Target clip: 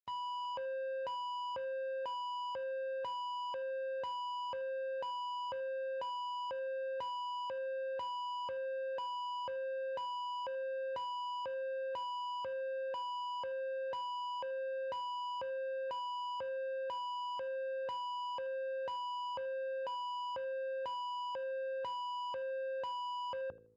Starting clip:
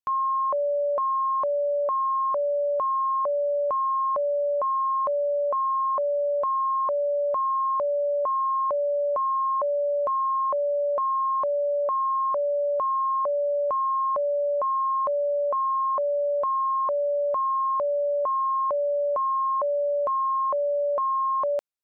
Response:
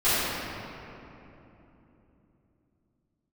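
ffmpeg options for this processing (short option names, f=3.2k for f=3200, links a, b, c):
-af "highpass=f=94:w=0.5412,highpass=f=94:w=1.3066,aemphasis=mode=reproduction:type=riaa,bandreject=f=60:t=h:w=6,bandreject=f=120:t=h:w=6,bandreject=f=180:t=h:w=6,bandreject=f=240:t=h:w=6,bandreject=f=300:t=h:w=6,bandreject=f=360:t=h:w=6,bandreject=f=420:t=h:w=6,bandreject=f=480:t=h:w=6,bandreject=f=540:t=h:w=6,areverse,acompressor=mode=upward:threshold=-45dB:ratio=2.5,areverse,asetrate=40517,aresample=44100,lowpass=f=1.2k:w=0.5412,lowpass=f=1.2k:w=1.3066,equalizer=f=510:w=0.4:g=-12,asoftclip=type=tanh:threshold=-39dB,aecho=1:1:81|162:0.0841|0.0227,volume=1dB" -ar 48000 -c:a libopus -b:a 32k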